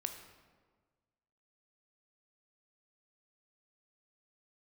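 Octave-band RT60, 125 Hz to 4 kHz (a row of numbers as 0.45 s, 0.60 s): 1.7 s, 1.6 s, 1.6 s, 1.4 s, 1.2 s, 0.90 s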